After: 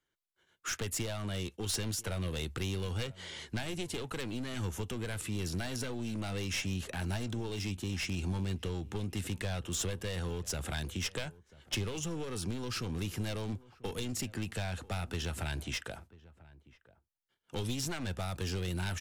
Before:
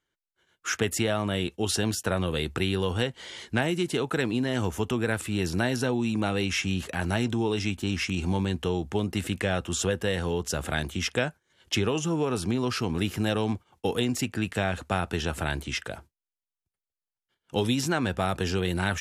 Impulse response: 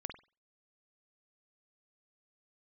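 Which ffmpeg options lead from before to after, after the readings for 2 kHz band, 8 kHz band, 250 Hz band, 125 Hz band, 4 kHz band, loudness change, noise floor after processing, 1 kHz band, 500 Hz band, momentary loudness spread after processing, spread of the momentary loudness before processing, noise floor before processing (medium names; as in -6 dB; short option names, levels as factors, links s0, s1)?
-10.5 dB, -4.5 dB, -11.0 dB, -6.0 dB, -7.0 dB, -9.0 dB, -77 dBFS, -12.0 dB, -12.0 dB, 4 LU, 4 LU, under -85 dBFS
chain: -filter_complex "[0:a]aeval=exprs='clip(val(0),-1,0.0376)':c=same,acrossover=split=140|3000[s0][s1][s2];[s1]acompressor=threshold=0.0178:ratio=4[s3];[s0][s3][s2]amix=inputs=3:normalize=0,asplit=2[s4][s5];[s5]adelay=991.3,volume=0.1,highshelf=f=4000:g=-22.3[s6];[s4][s6]amix=inputs=2:normalize=0,volume=0.668"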